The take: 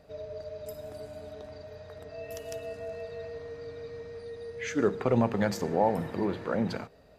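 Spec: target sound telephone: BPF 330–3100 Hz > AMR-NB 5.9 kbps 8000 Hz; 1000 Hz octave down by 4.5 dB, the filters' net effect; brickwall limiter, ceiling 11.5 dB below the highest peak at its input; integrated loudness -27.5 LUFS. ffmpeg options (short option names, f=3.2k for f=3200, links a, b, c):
-af "equalizer=f=1k:t=o:g=-6,alimiter=level_in=1.5dB:limit=-24dB:level=0:latency=1,volume=-1.5dB,highpass=330,lowpass=3.1k,volume=15.5dB" -ar 8000 -c:a libopencore_amrnb -b:a 5900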